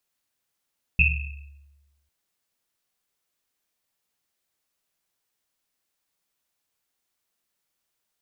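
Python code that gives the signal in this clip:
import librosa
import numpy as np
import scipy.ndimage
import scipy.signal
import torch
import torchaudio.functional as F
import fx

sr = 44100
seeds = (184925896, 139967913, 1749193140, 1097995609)

y = fx.risset_drum(sr, seeds[0], length_s=1.1, hz=71.0, decay_s=1.25, noise_hz=2600.0, noise_width_hz=200.0, noise_pct=50)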